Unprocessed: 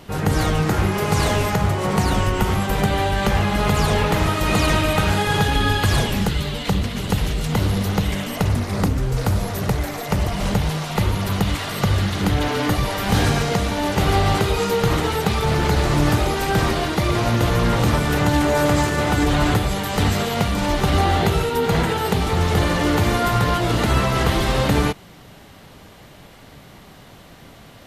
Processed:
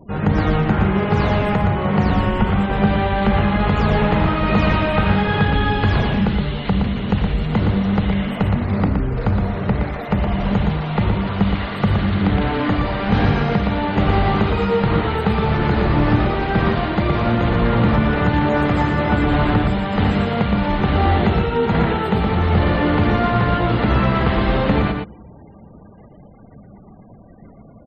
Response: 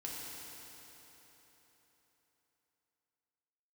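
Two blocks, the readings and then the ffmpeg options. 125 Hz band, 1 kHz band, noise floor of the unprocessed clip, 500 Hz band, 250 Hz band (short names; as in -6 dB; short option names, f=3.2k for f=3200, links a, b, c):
+2.0 dB, +1.0 dB, -44 dBFS, +1.0 dB, +4.0 dB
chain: -filter_complex "[0:a]adynamicsmooth=sensitivity=4:basefreq=7.7k,asplit=2[a][b];[1:a]atrim=start_sample=2205,lowpass=4.8k[c];[b][c]afir=irnorm=-1:irlink=0,volume=-23dB[d];[a][d]amix=inputs=2:normalize=0,acrossover=split=3200[e][f];[f]acompressor=threshold=-46dB:ratio=4:attack=1:release=60[g];[e][g]amix=inputs=2:normalize=0,afftfilt=real='re*gte(hypot(re,im),0.0126)':imag='im*gte(hypot(re,im),0.0126)':win_size=1024:overlap=0.75,equalizer=f=210:w=5.9:g=7.5,aecho=1:1:118:0.531"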